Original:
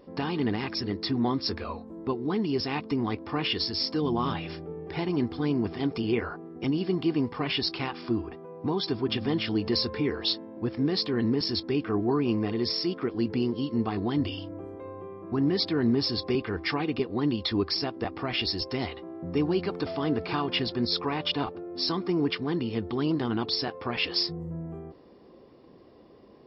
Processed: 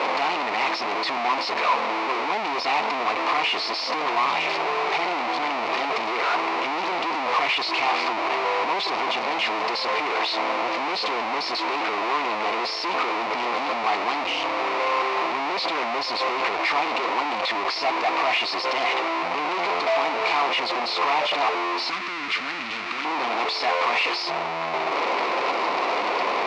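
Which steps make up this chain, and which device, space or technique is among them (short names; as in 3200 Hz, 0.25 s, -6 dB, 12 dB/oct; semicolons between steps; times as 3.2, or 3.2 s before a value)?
home computer beeper (infinite clipping; speaker cabinet 700–4100 Hz, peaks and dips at 710 Hz +5 dB, 1000 Hz +6 dB, 1600 Hz -7 dB, 2300 Hz +5 dB, 3300 Hz -6 dB); 21.9–23.05 band shelf 610 Hz -12.5 dB; gain +9 dB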